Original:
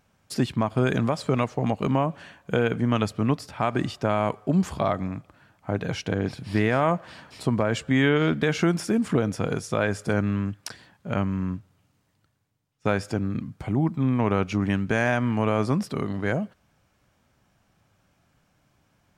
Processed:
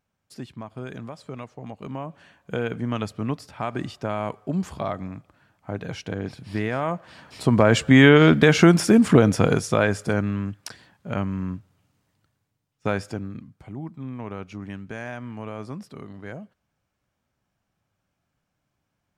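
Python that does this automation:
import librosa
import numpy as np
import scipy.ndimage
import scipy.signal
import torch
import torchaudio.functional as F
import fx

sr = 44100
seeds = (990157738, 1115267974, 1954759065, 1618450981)

y = fx.gain(x, sr, db=fx.line((1.68, -13.0), (2.61, -4.0), (7.06, -4.0), (7.66, 8.0), (9.42, 8.0), (10.33, -1.0), (12.98, -1.0), (13.54, -11.5)))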